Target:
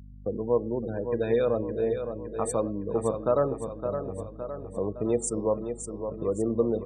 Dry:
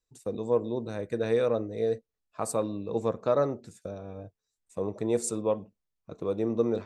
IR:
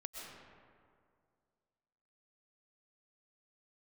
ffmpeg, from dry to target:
-filter_complex "[0:a]afftfilt=real='re*gte(hypot(re,im),0.0178)':imag='im*gte(hypot(re,im),0.0178)':win_size=1024:overlap=0.75,aecho=1:1:563|1126|1689|2252|2815|3378:0.355|0.174|0.0852|0.0417|0.0205|0.01,asplit=2[a][b];[b]acompressor=threshold=-39dB:ratio=6,volume=-2.5dB[c];[a][c]amix=inputs=2:normalize=0,aeval=exprs='val(0)+0.00562*(sin(2*PI*50*n/s)+sin(2*PI*2*50*n/s)/2+sin(2*PI*3*50*n/s)/3+sin(2*PI*4*50*n/s)/4+sin(2*PI*5*50*n/s)/5)':c=same,bandreject=f=276.3:t=h:w=4,bandreject=f=552.6:t=h:w=4,bandreject=f=828.9:t=h:w=4,bandreject=f=1.1052k:t=h:w=4,bandreject=f=1.3815k:t=h:w=4,bandreject=f=1.6578k:t=h:w=4,bandreject=f=1.9341k:t=h:w=4,bandreject=f=2.2104k:t=h:w=4,bandreject=f=2.4867k:t=h:w=4,bandreject=f=2.763k:t=h:w=4,bandreject=f=3.0393k:t=h:w=4,bandreject=f=3.3156k:t=h:w=4,bandreject=f=3.5919k:t=h:w=4,bandreject=f=3.8682k:t=h:w=4,bandreject=f=4.1445k:t=h:w=4,bandreject=f=4.4208k:t=h:w=4,bandreject=f=4.6971k:t=h:w=4,bandreject=f=4.9734k:t=h:w=4,bandreject=f=5.2497k:t=h:w=4"

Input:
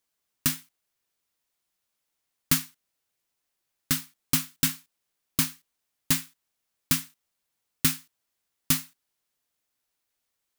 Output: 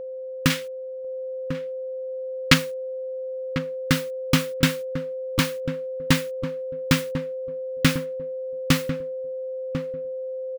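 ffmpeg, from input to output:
-filter_complex "[0:a]asettb=1/sr,asplit=3[a][b][c];[a]atrim=end=0.504[d];[b]atrim=start=0.5:end=2.54,asetpts=PTS-STARTPTS,afade=t=in:d=0.004:c=qsin,afade=t=out:st=2.036:d=0.004:c=qsin,equalizer=f=3.2k:w=0.39:g=8.5[e];[c]atrim=start=2.536[f];[d][e]acrossfade=d=0.004:c1=hsin:c2=qsin[g];[g][f]acrossfade=d=0.004:c1=qsin:c2=hsin,acrossover=split=6700[h][i];[i]acompressor=threshold=-29dB:ratio=4:attack=1:release=60[j];[h][j]amix=inputs=2:normalize=0,bass=f=250:g=1,treble=f=4k:g=-10,acontrast=67,acrusher=bits=8:mix=0:aa=0.000001,aeval=exprs='val(0)+0.02*sin(2*PI*520*n/s)':c=same,asplit=2[k][l];[l]adelay=1046,lowpass=f=900:p=1,volume=-8.5dB,asplit=2[m][n];[n]adelay=1046,lowpass=f=900:p=1,volume=0.17,asplit=2[o][p];[p]adelay=1046,lowpass=f=900:p=1,volume=0.17[q];[k][m][o][q]amix=inputs=4:normalize=0,volume=3dB"

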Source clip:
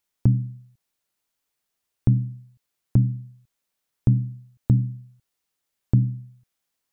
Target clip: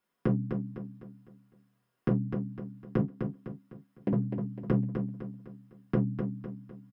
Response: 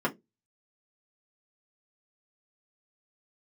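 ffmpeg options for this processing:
-filter_complex "[0:a]asettb=1/sr,asplit=3[a][b][c];[a]atrim=end=3.014[d];[b]atrim=start=3.01:end=4.13,asetpts=PTS-STARTPTS,afade=t=in:d=0.004:c=qsin,afade=t=out:st=1.116:d=0.004:c=qsin,highpass=480[e];[c]atrim=start=4.126[f];[d][e]acrossfade=d=0.004:c1=hsin:c2=qsin[g];[g][f]acrossfade=d=0.004:c1=qsin:c2=hsin,acompressor=threshold=-30dB:ratio=2.5,aeval=exprs='0.0631*(abs(mod(val(0)/0.0631+3,4)-2)-1)':c=same,aecho=1:1:253|506|759|1012|1265:0.501|0.21|0.0884|0.0371|0.0156[h];[1:a]atrim=start_sample=2205,atrim=end_sample=3087[i];[h][i]afir=irnorm=-1:irlink=0,volume=-4.5dB"

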